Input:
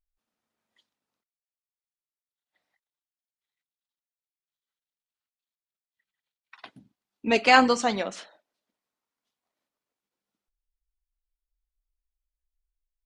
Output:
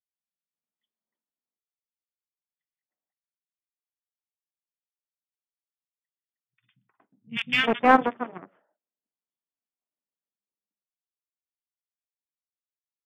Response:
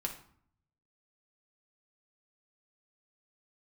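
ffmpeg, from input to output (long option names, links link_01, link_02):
-filter_complex "[0:a]asplit=2[link_01][link_02];[1:a]atrim=start_sample=2205,atrim=end_sample=3528[link_03];[link_02][link_03]afir=irnorm=-1:irlink=0,volume=-17dB[link_04];[link_01][link_04]amix=inputs=2:normalize=0,aeval=exprs='0.75*(cos(1*acos(clip(val(0)/0.75,-1,1)))-cos(1*PI/2))+0.119*(cos(7*acos(clip(val(0)/0.75,-1,1)))-cos(7*PI/2))+0.0473*(cos(8*acos(clip(val(0)/0.75,-1,1)))-cos(8*PI/2))':channel_layout=same,lowshelf=frequency=320:gain=9,afftfilt=real='re*between(b*sr/4096,110,3600)':imag='im*between(b*sr/4096,110,3600)':win_size=4096:overlap=0.75,acrossover=split=170|1800[link_05][link_06][link_07];[link_07]adelay=50[link_08];[link_06]adelay=360[link_09];[link_05][link_09][link_08]amix=inputs=3:normalize=0,asplit=2[link_10][link_11];[link_11]aeval=exprs='clip(val(0),-1,0.0891)':channel_layout=same,volume=-5dB[link_12];[link_10][link_12]amix=inputs=2:normalize=0,volume=-3dB"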